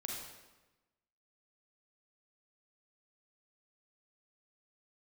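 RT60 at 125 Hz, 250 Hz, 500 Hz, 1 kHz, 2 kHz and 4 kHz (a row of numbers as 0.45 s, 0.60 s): 1.3 s, 1.2 s, 1.1 s, 1.1 s, 1.0 s, 0.90 s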